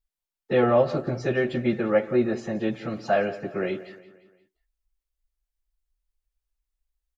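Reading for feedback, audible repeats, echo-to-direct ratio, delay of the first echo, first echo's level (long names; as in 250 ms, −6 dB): 49%, 3, −15.5 dB, 175 ms, −16.5 dB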